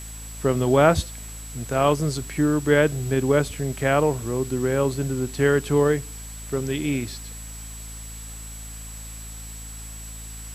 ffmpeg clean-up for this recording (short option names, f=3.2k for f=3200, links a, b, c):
-af "adeclick=t=4,bandreject=f=54.7:t=h:w=4,bandreject=f=109.4:t=h:w=4,bandreject=f=164.1:t=h:w=4,bandreject=f=218.8:t=h:w=4,bandreject=f=273.5:t=h:w=4,bandreject=f=7.8k:w=30,afwtdn=0.0063"